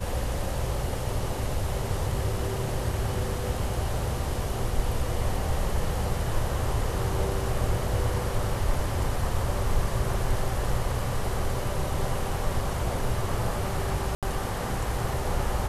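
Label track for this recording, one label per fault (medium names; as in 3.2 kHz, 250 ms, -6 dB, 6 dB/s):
14.150000	14.230000	dropout 77 ms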